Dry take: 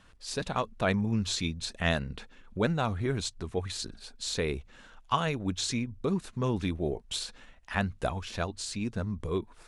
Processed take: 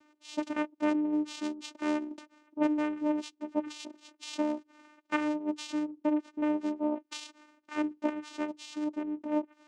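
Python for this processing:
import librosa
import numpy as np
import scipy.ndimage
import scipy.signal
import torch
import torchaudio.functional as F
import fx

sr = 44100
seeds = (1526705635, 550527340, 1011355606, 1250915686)

y = fx.env_lowpass_down(x, sr, base_hz=2700.0, full_db=-25.5)
y = fx.dynamic_eq(y, sr, hz=3500.0, q=2.4, threshold_db=-50.0, ratio=4.0, max_db=4)
y = fx.vocoder(y, sr, bands=4, carrier='saw', carrier_hz=301.0)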